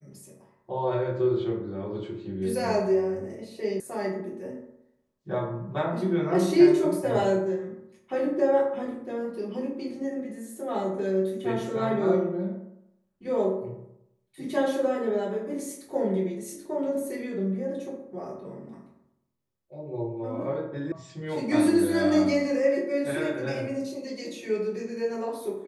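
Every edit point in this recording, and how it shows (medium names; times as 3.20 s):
3.80 s: sound stops dead
20.92 s: sound stops dead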